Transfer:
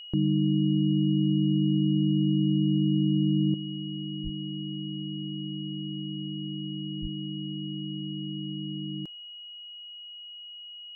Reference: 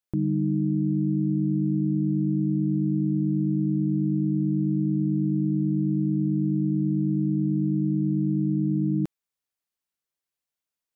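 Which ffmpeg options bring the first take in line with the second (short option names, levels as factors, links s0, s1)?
-filter_complex "[0:a]bandreject=f=2900:w=30,asplit=3[s0][s1][s2];[s0]afade=t=out:st=4.23:d=0.02[s3];[s1]highpass=f=140:w=0.5412,highpass=f=140:w=1.3066,afade=t=in:st=4.23:d=0.02,afade=t=out:st=4.35:d=0.02[s4];[s2]afade=t=in:st=4.35:d=0.02[s5];[s3][s4][s5]amix=inputs=3:normalize=0,asplit=3[s6][s7][s8];[s6]afade=t=out:st=7.01:d=0.02[s9];[s7]highpass=f=140:w=0.5412,highpass=f=140:w=1.3066,afade=t=in:st=7.01:d=0.02,afade=t=out:st=7.13:d=0.02[s10];[s8]afade=t=in:st=7.13:d=0.02[s11];[s9][s10][s11]amix=inputs=3:normalize=0,asetnsamples=n=441:p=0,asendcmd='3.54 volume volume 11dB',volume=1"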